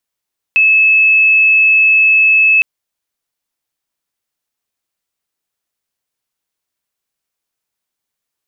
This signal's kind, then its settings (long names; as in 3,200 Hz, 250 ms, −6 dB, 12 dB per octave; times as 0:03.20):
tone sine 2,600 Hz −6 dBFS 2.06 s